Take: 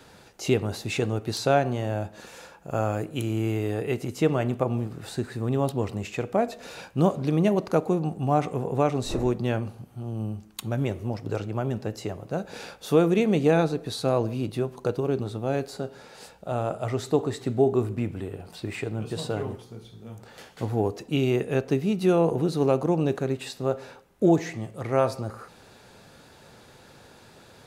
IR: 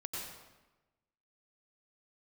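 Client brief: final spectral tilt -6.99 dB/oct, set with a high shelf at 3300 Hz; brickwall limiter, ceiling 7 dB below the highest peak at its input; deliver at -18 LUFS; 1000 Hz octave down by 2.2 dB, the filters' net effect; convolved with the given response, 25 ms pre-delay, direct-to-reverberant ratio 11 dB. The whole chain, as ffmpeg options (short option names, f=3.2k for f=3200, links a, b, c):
-filter_complex "[0:a]equalizer=f=1k:t=o:g=-3,highshelf=f=3.3k:g=-5,alimiter=limit=-16dB:level=0:latency=1,asplit=2[a][b];[1:a]atrim=start_sample=2205,adelay=25[c];[b][c]afir=irnorm=-1:irlink=0,volume=-11.5dB[d];[a][d]amix=inputs=2:normalize=0,volume=10.5dB"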